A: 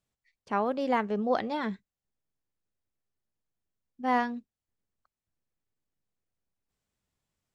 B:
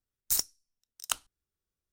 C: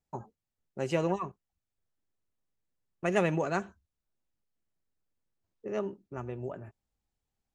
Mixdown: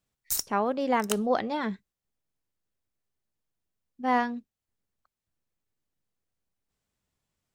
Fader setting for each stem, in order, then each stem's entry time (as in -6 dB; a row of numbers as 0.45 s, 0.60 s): +1.5 dB, -1.5 dB, mute; 0.00 s, 0.00 s, mute